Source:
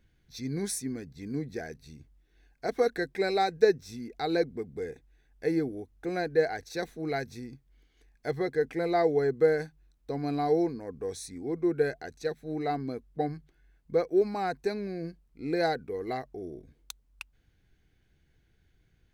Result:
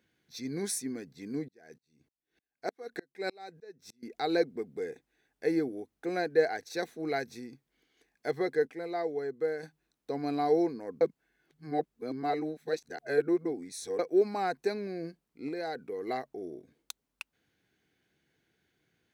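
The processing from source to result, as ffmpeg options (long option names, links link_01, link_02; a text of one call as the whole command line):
ffmpeg -i in.wav -filter_complex "[0:a]asettb=1/sr,asplit=3[link_01][link_02][link_03];[link_01]atrim=end=1.484[link_04];[link_02]atrim=start=1.48:end=4.03,asetpts=PTS-STARTPTS,afade=type=in:duration=0.004:curve=qsin,afade=type=out:start_time=2.546:duration=0.004:curve=qsin,aeval=exprs='val(0)*pow(10,-35*if(lt(mod(-3.3*n/s,1),2*abs(-3.3)/1000),1-mod(-3.3*n/s,1)/(2*abs(-3.3)/1000),(mod(-3.3*n/s,1)-2*abs(-3.3)/1000)/(1-2*abs(-3.3)/1000))/20)':channel_layout=same[link_05];[link_03]atrim=start=4.026[link_06];[link_04][link_05]acrossfade=duration=0.004:curve1=hsin:curve2=qsin[link_07];[link_07][link_06]acrossfade=duration=0.004:curve1=qsin:curve2=hsin,asettb=1/sr,asplit=3[link_08][link_09][link_10];[link_08]atrim=end=15.484[link_11];[link_09]atrim=start=15.48:end=16.03,asetpts=PTS-STARTPTS,afade=type=in:duration=0.004:curve=qsin,afade=type=out:start_time=0.546:duration=0.004:curve=qsin,acompressor=threshold=-32dB:ratio=6:attack=3.2:release=140:knee=1:detection=peak[link_12];[link_10]atrim=start=16.026[link_13];[link_11][link_12]acrossfade=duration=0.004:curve1=hsin:curve2=qsin[link_14];[link_14][link_13]acrossfade=duration=0.004:curve1=qsin:curve2=hsin,asplit=5[link_15][link_16][link_17][link_18][link_19];[link_15]atrim=end=8.672[link_20];[link_16]atrim=start=8.668:end=9.632,asetpts=PTS-STARTPTS,volume=-8dB[link_21];[link_17]atrim=start=9.628:end=11.012[link_22];[link_18]atrim=start=11.008:end=13.992,asetpts=PTS-STARTPTS,areverse[link_23];[link_19]atrim=start=13.988[link_24];[link_20][link_21]acrossfade=duration=0.004:curve1=hsin:curve2=hsin[link_25];[link_25][link_22]acrossfade=duration=0.004:curve1=hsin:curve2=hsin[link_26];[link_26][link_23]acrossfade=duration=0.004:curve1=hsin:curve2=hsin[link_27];[link_27][link_24]acrossfade=duration=0.004:curve1=hsin:curve2=hsin,highpass=220" out.wav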